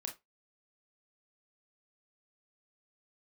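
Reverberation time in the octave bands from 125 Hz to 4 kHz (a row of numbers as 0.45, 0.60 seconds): 0.25, 0.15, 0.20, 0.20, 0.15, 0.15 seconds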